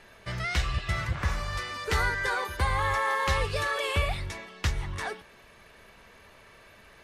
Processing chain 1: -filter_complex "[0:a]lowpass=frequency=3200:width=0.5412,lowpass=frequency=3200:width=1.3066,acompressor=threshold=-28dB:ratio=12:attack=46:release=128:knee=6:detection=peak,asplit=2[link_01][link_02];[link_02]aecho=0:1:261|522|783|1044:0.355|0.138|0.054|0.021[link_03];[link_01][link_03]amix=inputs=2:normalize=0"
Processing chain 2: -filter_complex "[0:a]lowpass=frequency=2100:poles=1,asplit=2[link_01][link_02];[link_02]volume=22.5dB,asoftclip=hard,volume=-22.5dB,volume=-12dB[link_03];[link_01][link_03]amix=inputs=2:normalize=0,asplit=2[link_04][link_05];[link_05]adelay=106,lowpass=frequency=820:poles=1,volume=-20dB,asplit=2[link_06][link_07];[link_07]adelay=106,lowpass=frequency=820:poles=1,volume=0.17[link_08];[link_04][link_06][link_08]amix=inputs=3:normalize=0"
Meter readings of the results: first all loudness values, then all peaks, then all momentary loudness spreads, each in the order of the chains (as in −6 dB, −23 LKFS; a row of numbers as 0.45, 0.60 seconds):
−31.5, −29.0 LKFS; −17.0, −15.5 dBFS; 9, 9 LU